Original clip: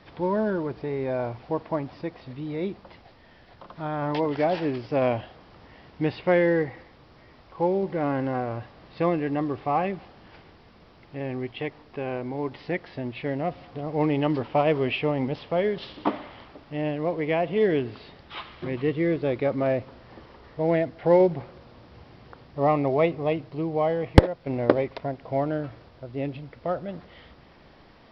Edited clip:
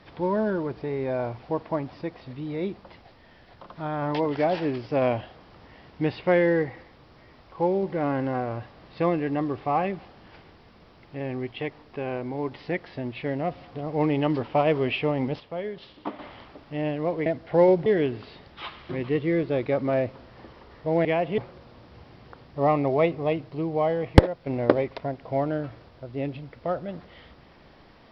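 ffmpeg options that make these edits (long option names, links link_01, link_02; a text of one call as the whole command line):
ffmpeg -i in.wav -filter_complex "[0:a]asplit=7[link_01][link_02][link_03][link_04][link_05][link_06][link_07];[link_01]atrim=end=15.402[link_08];[link_02]atrim=start=15.398:end=16.192,asetpts=PTS-STARTPTS,volume=-8dB[link_09];[link_03]atrim=start=16.188:end=17.262[link_10];[link_04]atrim=start=20.778:end=21.382[link_11];[link_05]atrim=start=17.588:end=20.782[link_12];[link_06]atrim=start=17.258:end=17.592[link_13];[link_07]atrim=start=21.378[link_14];[link_08][link_09]acrossfade=duration=0.004:curve1=hsin:curve2=hsin[link_15];[link_15][link_10]acrossfade=duration=0.004:curve1=hsin:curve2=hsin[link_16];[link_16][link_11]acrossfade=duration=0.004:curve1=hsin:curve2=hsin[link_17];[link_17][link_12]acrossfade=duration=0.004:curve1=hsin:curve2=hsin[link_18];[link_18][link_13]acrossfade=duration=0.004:curve1=hsin:curve2=hsin[link_19];[link_19][link_14]acrossfade=duration=0.004:curve1=hsin:curve2=hsin" out.wav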